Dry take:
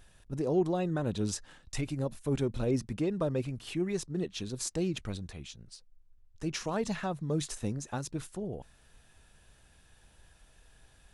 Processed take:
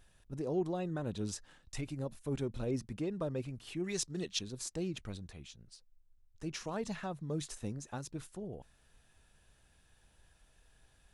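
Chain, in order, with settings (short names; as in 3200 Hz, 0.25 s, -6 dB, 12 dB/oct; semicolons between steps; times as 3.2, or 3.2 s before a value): 3.84–4.39 bell 5700 Hz +12.5 dB 2.9 oct; gain -6 dB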